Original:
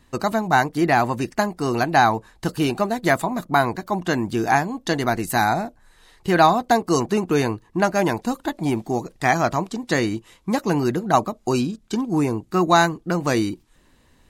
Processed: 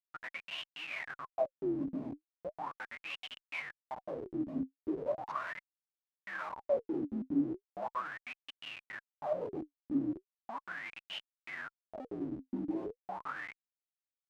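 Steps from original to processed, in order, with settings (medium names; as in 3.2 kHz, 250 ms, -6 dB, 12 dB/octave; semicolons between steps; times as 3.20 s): frequency axis rescaled in octaves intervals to 80%; spectral noise reduction 13 dB; comb 1.1 ms, depth 68%; compression 3:1, threshold -21 dBFS, peak gain reduction 9.5 dB; Schmitt trigger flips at -25 dBFS; wah-wah 0.38 Hz 260–3000 Hz, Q 13; trim +7 dB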